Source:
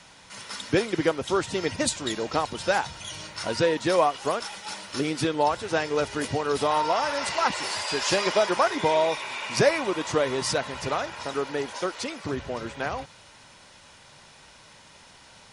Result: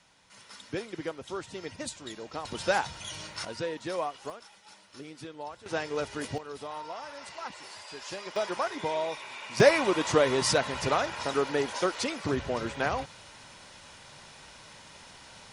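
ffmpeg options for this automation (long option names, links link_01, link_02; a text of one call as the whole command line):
ffmpeg -i in.wav -af "asetnsamples=nb_out_samples=441:pad=0,asendcmd='2.45 volume volume -2.5dB;3.45 volume volume -11dB;4.3 volume volume -17.5dB;5.66 volume volume -6.5dB;6.38 volume volume -15.5dB;8.36 volume volume -8.5dB;9.6 volume volume 1dB',volume=-12dB" out.wav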